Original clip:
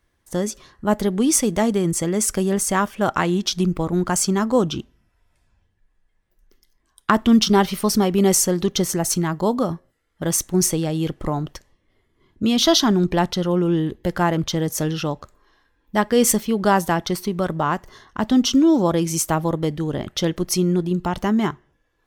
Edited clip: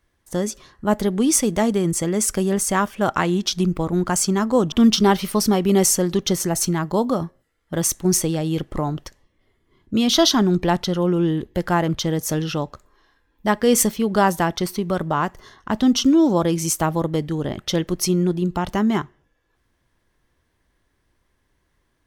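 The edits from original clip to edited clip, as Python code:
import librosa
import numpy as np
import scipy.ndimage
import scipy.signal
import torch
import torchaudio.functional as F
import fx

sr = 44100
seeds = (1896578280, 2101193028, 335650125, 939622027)

y = fx.edit(x, sr, fx.cut(start_s=4.72, length_s=2.49), tone=tone)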